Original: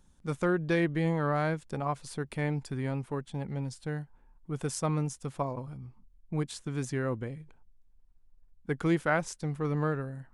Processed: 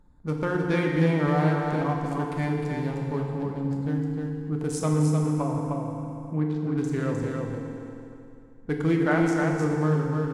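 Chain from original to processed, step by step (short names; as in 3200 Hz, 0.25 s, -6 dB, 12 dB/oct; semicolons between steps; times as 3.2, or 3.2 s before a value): Wiener smoothing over 15 samples; 4.9–6.78 Chebyshev low-pass 2300 Hz, order 2; on a send: echo 0.307 s -4.5 dB; on the sum: FDN reverb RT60 2.5 s, low-frequency decay 1.05×, high-frequency decay 0.85×, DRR 0.5 dB; in parallel at -3 dB: compressor, threshold -38 dBFS, peak gain reduction 19 dB; on the sum: Vorbis 64 kbps 48000 Hz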